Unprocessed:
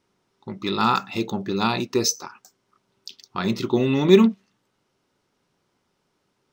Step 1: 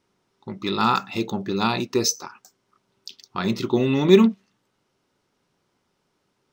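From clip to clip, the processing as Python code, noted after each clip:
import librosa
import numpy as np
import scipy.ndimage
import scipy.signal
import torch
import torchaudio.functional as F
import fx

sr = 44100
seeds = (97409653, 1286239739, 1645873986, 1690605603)

y = x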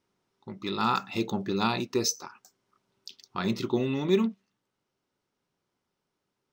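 y = fx.rider(x, sr, range_db=4, speed_s=0.5)
y = F.gain(torch.from_numpy(y), -6.5).numpy()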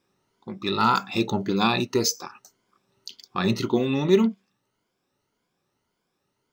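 y = fx.spec_ripple(x, sr, per_octave=1.8, drift_hz=1.8, depth_db=9)
y = F.gain(torch.from_numpy(y), 4.5).numpy()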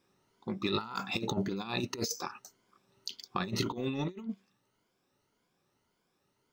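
y = fx.over_compress(x, sr, threshold_db=-27.0, ratio=-0.5)
y = F.gain(torch.from_numpy(y), -6.0).numpy()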